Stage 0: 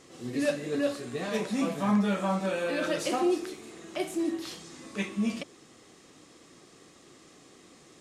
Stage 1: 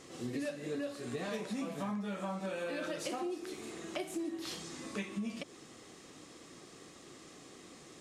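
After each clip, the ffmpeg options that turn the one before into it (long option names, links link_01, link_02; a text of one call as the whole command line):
ffmpeg -i in.wav -af "acompressor=threshold=-36dB:ratio=10,volume=1dB" out.wav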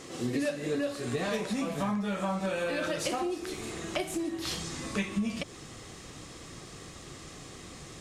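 ffmpeg -i in.wav -af "asubboost=boost=6:cutoff=110,volume=8dB" out.wav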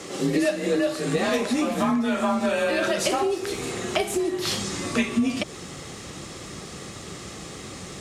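ffmpeg -i in.wav -af "afreqshift=34,volume=8dB" out.wav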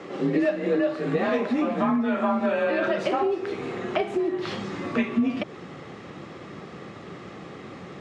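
ffmpeg -i in.wav -af "highpass=130,lowpass=2100" out.wav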